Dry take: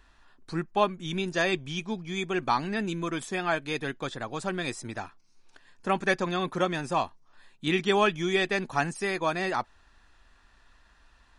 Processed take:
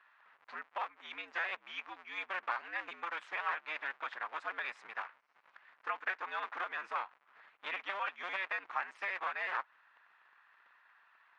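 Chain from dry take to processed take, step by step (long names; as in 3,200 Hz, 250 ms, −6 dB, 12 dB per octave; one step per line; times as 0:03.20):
sub-harmonics by changed cycles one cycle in 2, inverted
downward compressor 10 to 1, threshold −28 dBFS, peak gain reduction 11 dB
flat-topped band-pass 1,500 Hz, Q 1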